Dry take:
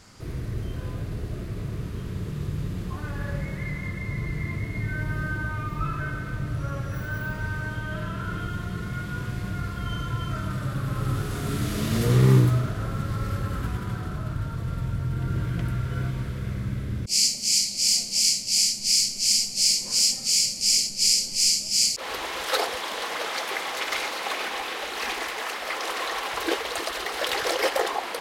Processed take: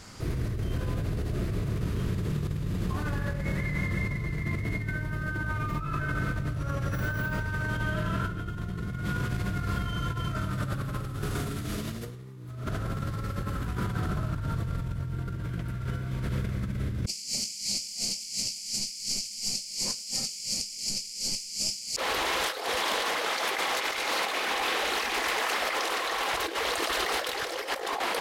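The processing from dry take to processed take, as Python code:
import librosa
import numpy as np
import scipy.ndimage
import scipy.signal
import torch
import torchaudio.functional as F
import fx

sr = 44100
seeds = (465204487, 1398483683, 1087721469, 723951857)

y = fx.low_shelf(x, sr, hz=450.0, db=6.0, at=(8.28, 9.04), fade=0.02)
y = fx.over_compress(y, sr, threshold_db=-32.0, ratio=-1.0)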